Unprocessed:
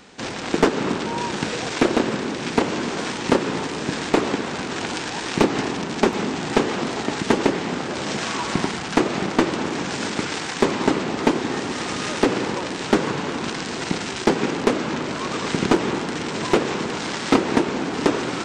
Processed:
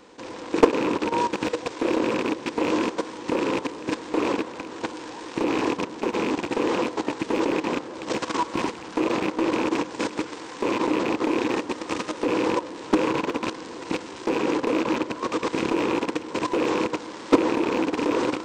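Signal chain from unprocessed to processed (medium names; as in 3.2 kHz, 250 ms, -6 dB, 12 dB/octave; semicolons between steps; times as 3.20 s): rattle on loud lows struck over -28 dBFS, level -14 dBFS; level held to a coarse grid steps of 13 dB; graphic EQ with 31 bands 160 Hz -6 dB, 315 Hz +11 dB, 500 Hz +11 dB, 1 kHz +10 dB; trim -3 dB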